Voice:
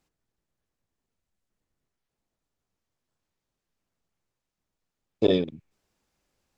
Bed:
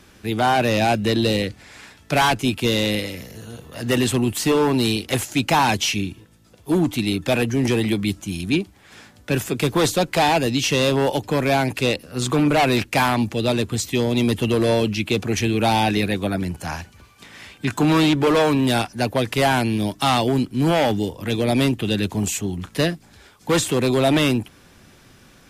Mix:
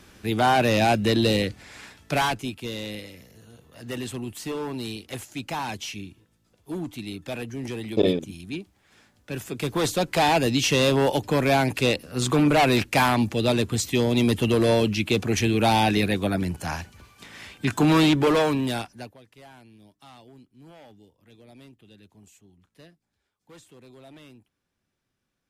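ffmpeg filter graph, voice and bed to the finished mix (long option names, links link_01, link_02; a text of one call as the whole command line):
ffmpeg -i stem1.wav -i stem2.wav -filter_complex "[0:a]adelay=2750,volume=0.5dB[link_01];[1:a]volume=10dB,afade=type=out:start_time=1.86:duration=0.69:silence=0.266073,afade=type=in:start_time=9.24:duration=1.22:silence=0.266073,afade=type=out:start_time=18.16:duration=1.01:silence=0.0354813[link_02];[link_01][link_02]amix=inputs=2:normalize=0" out.wav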